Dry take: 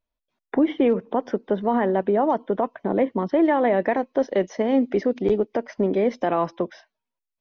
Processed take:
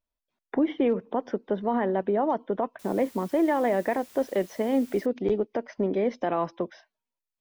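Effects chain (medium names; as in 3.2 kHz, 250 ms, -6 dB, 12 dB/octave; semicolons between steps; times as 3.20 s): 2.79–5.06 s: word length cut 8-bit, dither triangular; trim -4.5 dB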